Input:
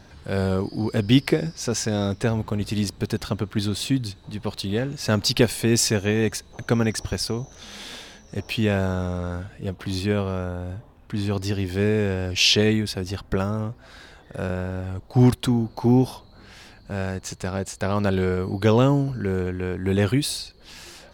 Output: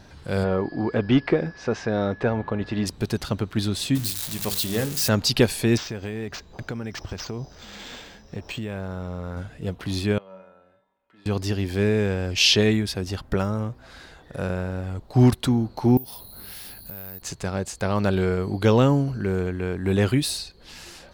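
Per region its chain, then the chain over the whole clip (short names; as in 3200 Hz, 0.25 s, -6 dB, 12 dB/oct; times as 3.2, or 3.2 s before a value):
0.43–2.85 whine 1700 Hz -47 dBFS + overdrive pedal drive 14 dB, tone 2300 Hz, clips at -6 dBFS + tape spacing loss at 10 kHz 27 dB
3.95–5.09 switching spikes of -18.5 dBFS + notches 50/100/150/200/250/300/350/400/450/500 Hz
5.77–9.37 compressor 10:1, threshold -27 dBFS + decimation joined by straight lines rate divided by 4×
10.18–11.26 three-band isolator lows -22 dB, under 330 Hz, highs -15 dB, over 3400 Hz + resonator 190 Hz, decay 0.74 s, harmonics odd, mix 90%
15.97–17.22 bell 4300 Hz +8 dB 0.92 oct + careless resampling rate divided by 3×, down none, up zero stuff + compressor 8:1, threshold -32 dBFS
whole clip: dry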